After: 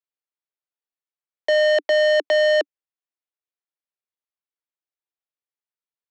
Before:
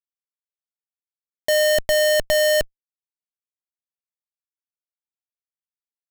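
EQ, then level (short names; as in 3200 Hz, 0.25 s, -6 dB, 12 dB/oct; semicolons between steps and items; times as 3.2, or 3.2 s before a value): steep high-pass 290 Hz 96 dB/oct; LPF 5500 Hz 12 dB/oct; air absorption 130 m; +1.5 dB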